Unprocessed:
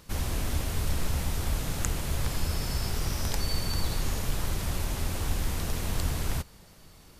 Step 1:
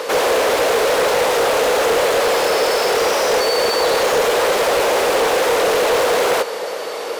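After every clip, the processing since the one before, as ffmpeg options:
-filter_complex "[0:a]asplit=2[a][b];[b]highpass=f=720:p=1,volume=36dB,asoftclip=type=tanh:threshold=-9.5dB[c];[a][c]amix=inputs=2:normalize=0,lowpass=f=1.9k:p=1,volume=-6dB,highpass=f=480:t=q:w=5.6,aeval=exprs='0.596*sin(PI/2*2*val(0)/0.596)':c=same,volume=-6.5dB"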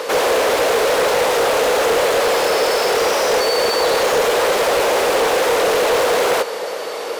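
-af anull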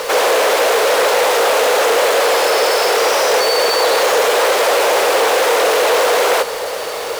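-af "highpass=410,acrusher=bits=4:mix=0:aa=0.5,volume=3.5dB"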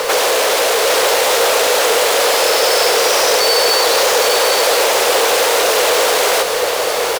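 -filter_complex "[0:a]acrossover=split=150|3000[a][b][c];[b]acompressor=threshold=-20dB:ratio=3[d];[a][d][c]amix=inputs=3:normalize=0,aecho=1:1:809:0.473,volume=4.5dB"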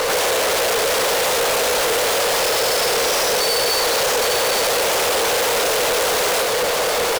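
-af "asoftclip=type=hard:threshold=-18.5dB,volume=1.5dB"

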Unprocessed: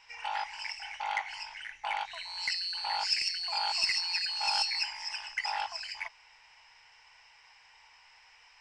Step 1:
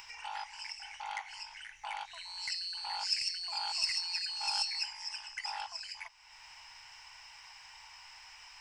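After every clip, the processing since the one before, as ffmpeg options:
-af "equalizer=f=250:t=o:w=1:g=-8,equalizer=f=500:t=o:w=1:g=-9,equalizer=f=2k:t=o:w=1:g=-5,equalizer=f=4k:t=o:w=1:g=-3,acompressor=mode=upward:threshold=-40dB:ratio=2.5,highshelf=f=5.5k:g=6,volume=-3dB"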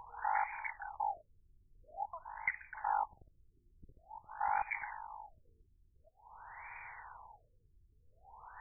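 -af "afftfilt=real='re*lt(b*sr/1024,410*pow(2500/410,0.5+0.5*sin(2*PI*0.48*pts/sr)))':imag='im*lt(b*sr/1024,410*pow(2500/410,0.5+0.5*sin(2*PI*0.48*pts/sr)))':win_size=1024:overlap=0.75,volume=8dB"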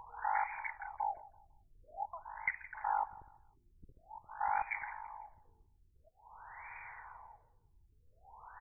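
-af "aecho=1:1:167|334|501:0.112|0.0359|0.0115"

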